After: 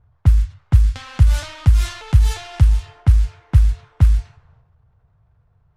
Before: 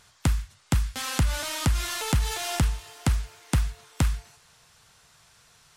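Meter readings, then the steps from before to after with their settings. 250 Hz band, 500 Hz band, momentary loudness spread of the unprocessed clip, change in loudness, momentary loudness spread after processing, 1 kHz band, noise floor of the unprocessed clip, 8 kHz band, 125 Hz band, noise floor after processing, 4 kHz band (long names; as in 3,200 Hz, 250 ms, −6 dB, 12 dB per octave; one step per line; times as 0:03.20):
+0.5 dB, −2.5 dB, 3 LU, +10.0 dB, 3 LU, −2.0 dB, −59 dBFS, −5.5 dB, +11.5 dB, −60 dBFS, −2.5 dB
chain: low-pass that shuts in the quiet parts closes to 690 Hz, open at −21 dBFS
transient designer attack +2 dB, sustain +8 dB
low shelf with overshoot 150 Hz +13 dB, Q 1.5
level −4 dB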